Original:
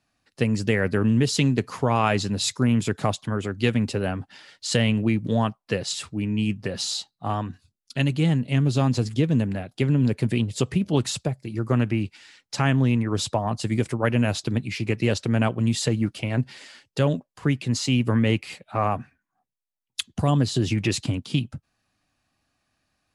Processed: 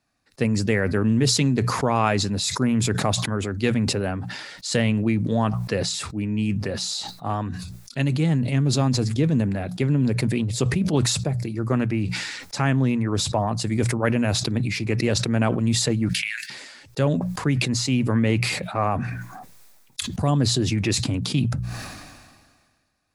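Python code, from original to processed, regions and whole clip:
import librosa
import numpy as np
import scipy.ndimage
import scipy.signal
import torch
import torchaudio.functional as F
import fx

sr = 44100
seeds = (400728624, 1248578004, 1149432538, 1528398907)

y = fx.chain(x, sr, fx.steep_highpass(hz=1600.0, slope=72),
    fx.band_squash(depth_pct=100), at=(16.09, 16.5))
y = fx.peak_eq(y, sr, hz=3000.0, db=-6.5, octaves=0.29)
y = fx.hum_notches(y, sr, base_hz=60, count=3)
y = fx.sustainer(y, sr, db_per_s=35.0)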